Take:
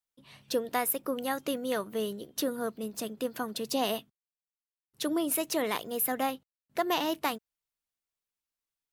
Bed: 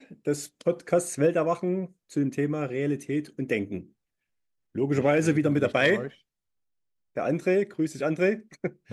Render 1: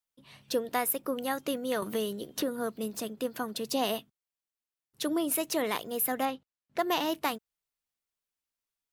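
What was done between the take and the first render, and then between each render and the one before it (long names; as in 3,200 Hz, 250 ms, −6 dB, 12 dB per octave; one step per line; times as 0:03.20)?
0:01.82–0:03.00: multiband upward and downward compressor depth 70%
0:06.25–0:06.79: high-frequency loss of the air 60 metres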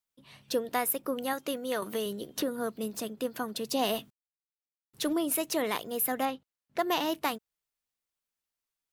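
0:01.33–0:02.06: low-shelf EQ 160 Hz −10 dB
0:03.79–0:05.13: mu-law and A-law mismatch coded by mu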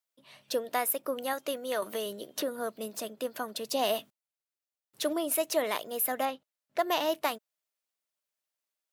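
high-pass filter 420 Hz 6 dB per octave
parametric band 610 Hz +8.5 dB 0.26 octaves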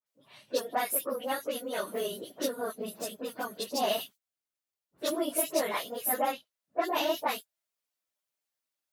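random phases in long frames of 50 ms
all-pass dispersion highs, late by 64 ms, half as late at 2,100 Hz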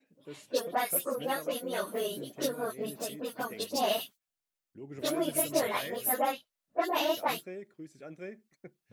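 mix in bed −19.5 dB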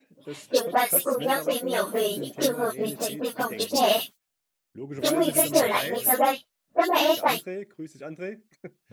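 level +8 dB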